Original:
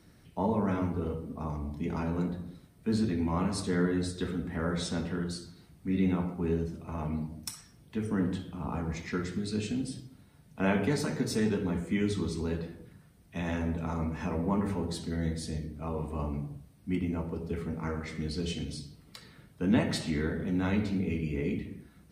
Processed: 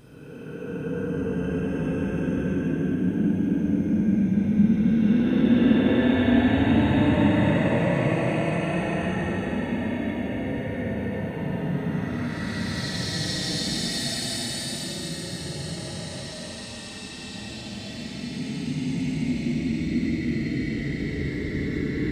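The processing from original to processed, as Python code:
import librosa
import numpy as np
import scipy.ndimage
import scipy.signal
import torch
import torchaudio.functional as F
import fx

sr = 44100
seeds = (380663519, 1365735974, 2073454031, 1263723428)

y = fx.paulstretch(x, sr, seeds[0], factor=38.0, window_s=0.05, from_s=19.59)
y = y * 10.0 ** (3.0 / 20.0)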